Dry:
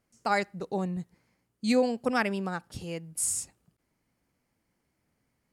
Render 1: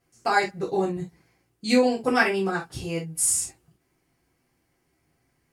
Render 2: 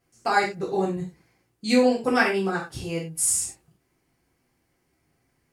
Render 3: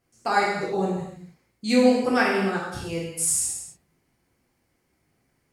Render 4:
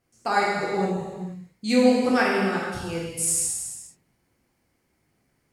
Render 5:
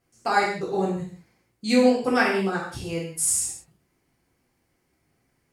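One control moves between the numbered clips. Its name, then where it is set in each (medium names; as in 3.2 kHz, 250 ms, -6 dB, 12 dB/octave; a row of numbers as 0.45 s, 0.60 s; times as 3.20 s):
gated-style reverb, gate: 90 ms, 130 ms, 340 ms, 530 ms, 220 ms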